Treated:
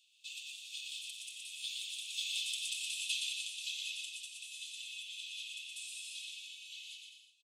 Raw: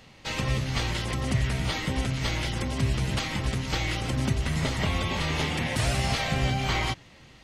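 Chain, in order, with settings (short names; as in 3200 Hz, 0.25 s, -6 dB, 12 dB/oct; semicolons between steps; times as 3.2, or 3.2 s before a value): Doppler pass-by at 2.78, 11 m/s, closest 4.7 m; in parallel at +3 dB: compressor, threshold -41 dBFS, peak gain reduction 18.5 dB; on the sum: rippled Chebyshev high-pass 2500 Hz, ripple 9 dB; bouncing-ball echo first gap 0.12 s, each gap 0.75×, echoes 5; gain +2 dB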